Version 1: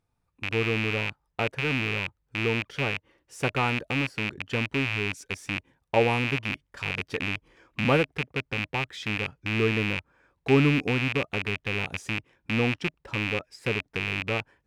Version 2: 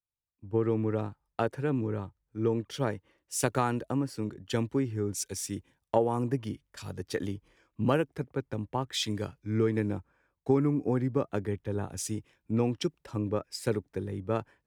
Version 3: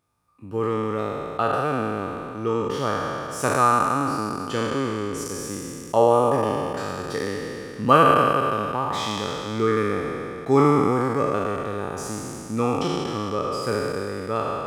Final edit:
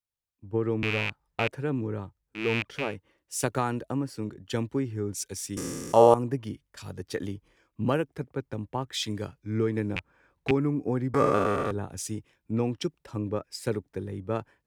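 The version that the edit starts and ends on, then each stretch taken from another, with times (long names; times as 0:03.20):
2
0:00.83–0:01.51: punch in from 1
0:02.42–0:02.84: punch in from 1, crossfade 0.24 s
0:05.57–0:06.14: punch in from 3
0:09.96–0:10.51: punch in from 1
0:11.14–0:11.71: punch in from 3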